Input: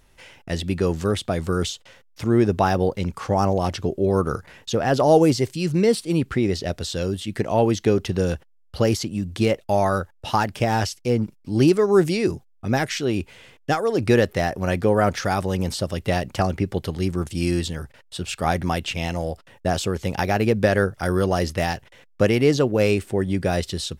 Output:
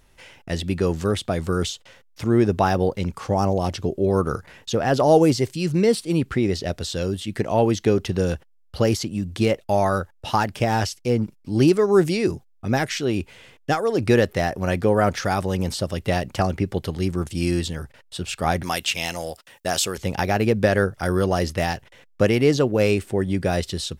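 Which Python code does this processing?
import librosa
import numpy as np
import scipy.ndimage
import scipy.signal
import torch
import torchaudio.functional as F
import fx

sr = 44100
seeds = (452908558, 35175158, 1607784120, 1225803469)

y = fx.dynamic_eq(x, sr, hz=1500.0, q=0.99, threshold_db=-38.0, ratio=4.0, max_db=-4, at=(3.05, 3.95))
y = fx.tilt_eq(y, sr, slope=3.0, at=(18.63, 19.98))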